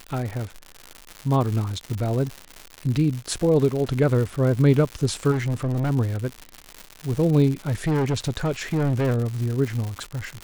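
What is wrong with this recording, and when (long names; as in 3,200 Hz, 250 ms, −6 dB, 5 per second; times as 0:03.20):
surface crackle 190 per second −27 dBFS
0:05.31–0:05.91: clipping −20.5 dBFS
0:07.67–0:09.27: clipping −18.5 dBFS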